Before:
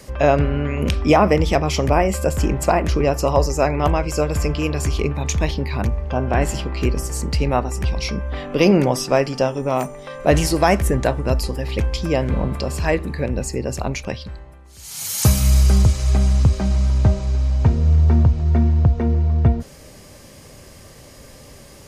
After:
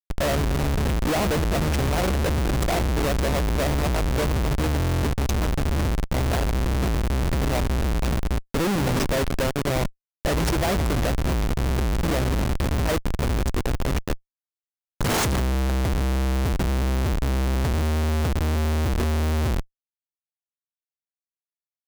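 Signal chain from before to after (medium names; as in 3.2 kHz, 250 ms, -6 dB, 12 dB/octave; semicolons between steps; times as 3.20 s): Schmitt trigger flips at -20.5 dBFS; buffer glitch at 4.78 s, samples 1024, times 10; trim -3.5 dB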